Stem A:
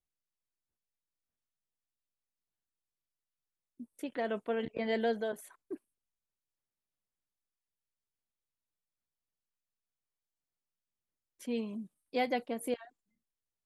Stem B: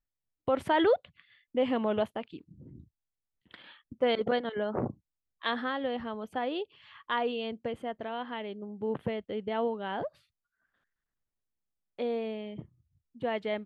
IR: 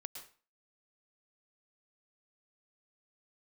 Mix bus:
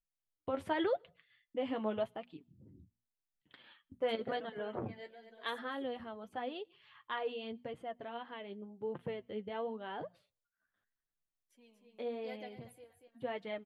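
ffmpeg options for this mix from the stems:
-filter_complex "[0:a]lowshelf=frequency=280:gain=-11,adelay=100,volume=-11.5dB,asplit=3[link_01][link_02][link_03];[link_02]volume=-17dB[link_04];[link_03]volume=-11.5dB[link_05];[1:a]bandreject=frequency=60:width_type=h:width=6,bandreject=frequency=120:width_type=h:width=6,bandreject=frequency=180:width_type=h:width=6,bandreject=frequency=240:width_type=h:width=6,volume=-4.5dB,asplit=3[link_06][link_07][link_08];[link_07]volume=-22.5dB[link_09];[link_08]apad=whole_len=606615[link_10];[link_01][link_10]sidechaingate=range=-9dB:threshold=-57dB:ratio=16:detection=peak[link_11];[2:a]atrim=start_sample=2205[link_12];[link_04][link_09]amix=inputs=2:normalize=0[link_13];[link_13][link_12]afir=irnorm=-1:irlink=0[link_14];[link_05]aecho=0:1:236|472|708|944:1|0.22|0.0484|0.0106[link_15];[link_11][link_06][link_14][link_15]amix=inputs=4:normalize=0,flanger=delay=5.5:depth=5.7:regen=35:speed=0.89:shape=triangular"

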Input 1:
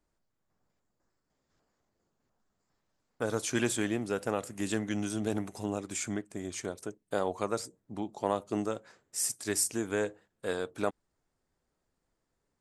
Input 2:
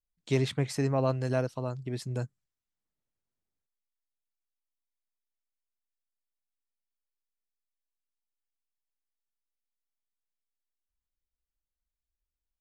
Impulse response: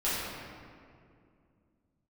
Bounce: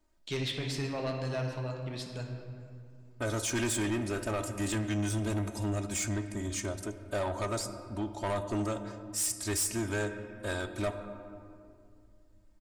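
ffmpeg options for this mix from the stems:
-filter_complex "[0:a]aecho=1:1:3.2:0.89,asubboost=boost=7:cutoff=100,volume=1.5dB,asplit=2[link_01][link_02];[link_02]volume=-20dB[link_03];[1:a]equalizer=frequency=3400:width=0.68:gain=11.5,volume=-8.5dB,asplit=2[link_04][link_05];[link_05]volume=-10.5dB[link_06];[2:a]atrim=start_sample=2205[link_07];[link_03][link_06]amix=inputs=2:normalize=0[link_08];[link_08][link_07]afir=irnorm=-1:irlink=0[link_09];[link_01][link_04][link_09]amix=inputs=3:normalize=0,asoftclip=type=tanh:threshold=-26.5dB"

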